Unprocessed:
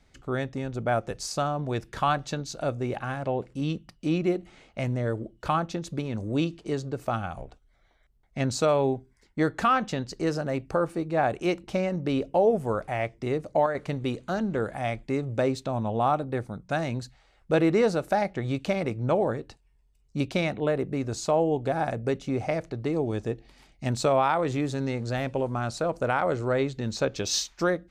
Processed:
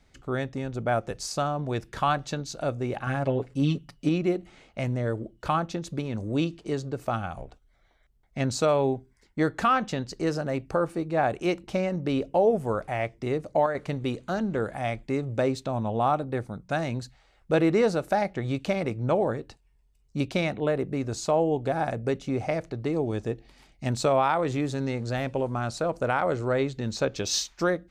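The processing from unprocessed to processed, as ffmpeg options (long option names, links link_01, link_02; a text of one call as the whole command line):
ffmpeg -i in.wav -filter_complex "[0:a]asettb=1/sr,asplit=3[link_01][link_02][link_03];[link_01]atrim=end=3.064[link_04];[link_02]atrim=start=3.06:end=4.09,asetpts=PTS-STARTPTS,afade=type=in:duration=0.004:curve=qsin,afade=type=out:start_time=1.026:duration=0.004:curve=qsin,aecho=1:1:7.2:0.91,atrim=end_sample=45423[link_05];[link_03]atrim=start=4.086[link_06];[link_04][link_05]acrossfade=duration=0.004:curve1=hsin:curve2=qsin[link_07];[link_07][link_06]acrossfade=duration=0.004:curve1=qsin:curve2=hsin" out.wav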